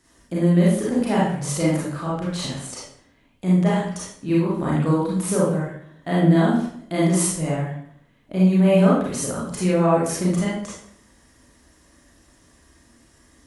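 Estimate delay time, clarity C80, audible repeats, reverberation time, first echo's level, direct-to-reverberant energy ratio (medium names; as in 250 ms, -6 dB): no echo, 5.0 dB, no echo, 0.65 s, no echo, -7.0 dB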